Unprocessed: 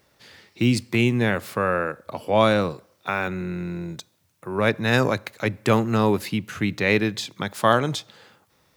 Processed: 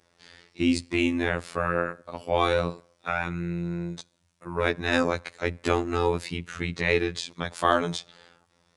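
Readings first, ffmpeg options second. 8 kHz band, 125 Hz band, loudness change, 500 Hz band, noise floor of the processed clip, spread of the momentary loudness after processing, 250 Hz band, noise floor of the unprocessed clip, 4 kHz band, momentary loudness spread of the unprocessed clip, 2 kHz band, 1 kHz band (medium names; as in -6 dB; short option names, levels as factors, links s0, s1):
-3.5 dB, -7.0 dB, -4.5 dB, -4.0 dB, -69 dBFS, 10 LU, -5.0 dB, -65 dBFS, -3.5 dB, 11 LU, -3.5 dB, -3.5 dB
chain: -af "afftfilt=real='hypot(re,im)*cos(PI*b)':imag='0':win_size=2048:overlap=0.75,aresample=22050,aresample=44100"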